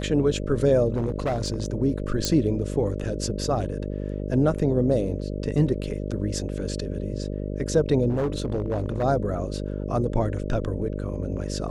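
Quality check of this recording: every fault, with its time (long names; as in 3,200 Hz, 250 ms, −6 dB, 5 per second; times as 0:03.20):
mains buzz 50 Hz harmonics 12 −30 dBFS
0:00.94–0:01.74: clipping −20.5 dBFS
0:02.25: click −8 dBFS
0:08.09–0:09.04: clipping −20.5 dBFS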